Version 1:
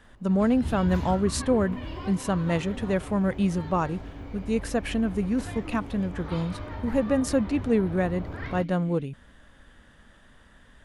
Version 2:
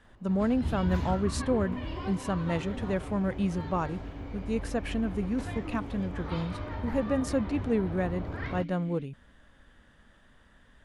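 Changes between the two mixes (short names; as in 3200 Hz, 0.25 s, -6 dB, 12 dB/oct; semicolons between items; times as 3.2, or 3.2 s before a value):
speech -4.5 dB; master: add high shelf 8000 Hz -5.5 dB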